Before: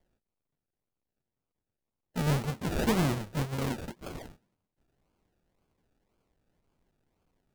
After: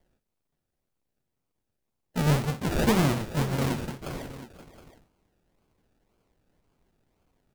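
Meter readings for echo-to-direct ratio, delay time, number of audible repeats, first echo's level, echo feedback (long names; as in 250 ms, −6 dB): −9.5 dB, 60 ms, 3, −13.0 dB, repeats not evenly spaced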